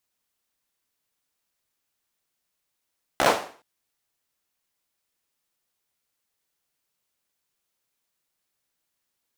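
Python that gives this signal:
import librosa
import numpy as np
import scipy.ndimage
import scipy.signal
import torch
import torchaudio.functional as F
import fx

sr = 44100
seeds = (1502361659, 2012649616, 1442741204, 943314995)

y = fx.drum_clap(sr, seeds[0], length_s=0.42, bursts=5, spacing_ms=15, hz=640.0, decay_s=0.44)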